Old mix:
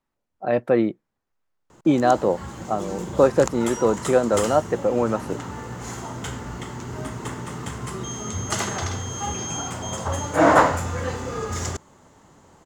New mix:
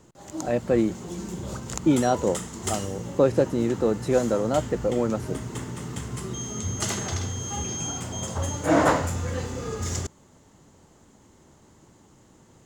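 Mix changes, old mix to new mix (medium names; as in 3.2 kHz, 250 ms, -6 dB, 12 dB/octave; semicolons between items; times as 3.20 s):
background: entry -1.70 s; master: add peaking EQ 1.1 kHz -7.5 dB 2.2 oct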